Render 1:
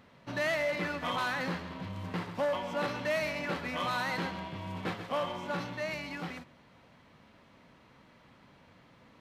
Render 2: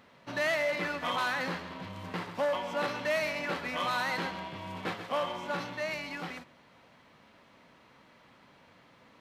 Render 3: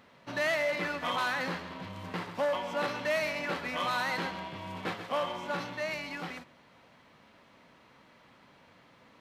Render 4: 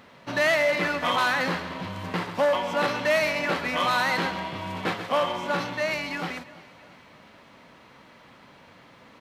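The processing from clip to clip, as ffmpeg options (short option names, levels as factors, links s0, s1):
-af "lowshelf=f=210:g=-9,volume=1.26"
-af anull
-af "aecho=1:1:336|672|1008|1344:0.0891|0.0463|0.0241|0.0125,volume=2.37"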